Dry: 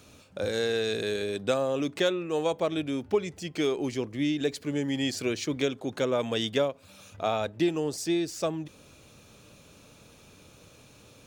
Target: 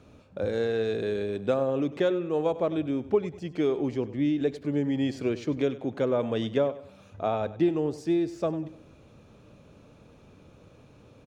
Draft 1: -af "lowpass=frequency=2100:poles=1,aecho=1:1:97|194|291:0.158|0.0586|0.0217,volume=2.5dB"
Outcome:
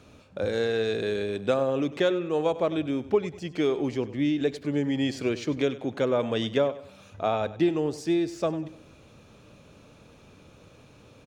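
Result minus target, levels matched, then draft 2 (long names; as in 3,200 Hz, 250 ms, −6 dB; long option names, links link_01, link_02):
2,000 Hz band +4.0 dB
-af "lowpass=frequency=890:poles=1,aecho=1:1:97|194|291:0.158|0.0586|0.0217,volume=2.5dB"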